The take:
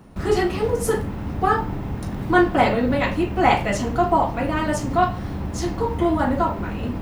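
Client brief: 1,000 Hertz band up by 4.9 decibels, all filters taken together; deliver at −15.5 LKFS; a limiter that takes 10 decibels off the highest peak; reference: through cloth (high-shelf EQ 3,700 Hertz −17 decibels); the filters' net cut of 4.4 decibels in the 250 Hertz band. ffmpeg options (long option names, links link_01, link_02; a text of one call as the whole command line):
ffmpeg -i in.wav -af "equalizer=frequency=250:width_type=o:gain=-7,equalizer=frequency=1000:width_type=o:gain=8.5,alimiter=limit=-10dB:level=0:latency=1,highshelf=frequency=3700:gain=-17,volume=7.5dB" out.wav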